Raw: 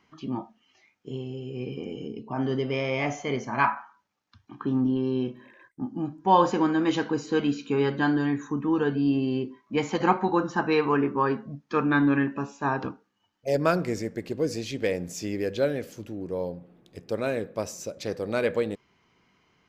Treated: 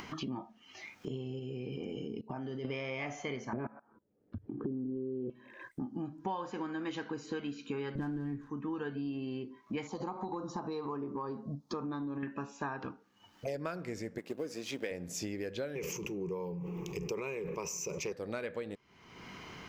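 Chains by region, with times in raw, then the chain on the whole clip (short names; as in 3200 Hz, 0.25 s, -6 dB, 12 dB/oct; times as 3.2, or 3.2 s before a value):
1.39–2.65 notch 1100 Hz, Q 8.2 + level quantiser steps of 20 dB
3.53–5.3 LPF 1300 Hz + resonant low shelf 670 Hz +13.5 dB, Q 3 + level quantiser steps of 22 dB
7.95–8.5 switching dead time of 0.09 ms + tilt -4.5 dB/oct
9.87–12.23 band shelf 2100 Hz -16 dB 1.3 oct + compressor 3:1, threshold -27 dBFS
14.18–14.91 G.711 law mismatch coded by A + HPF 210 Hz + notch 4300 Hz, Q 14
15.75–18.12 ripple EQ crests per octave 0.76, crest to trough 17 dB + sustainer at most 38 dB/s
whole clip: upward compressor, threshold -34 dBFS; dynamic EQ 1900 Hz, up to +4 dB, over -41 dBFS, Q 0.79; compressor 10:1, threshold -36 dBFS; gain +1 dB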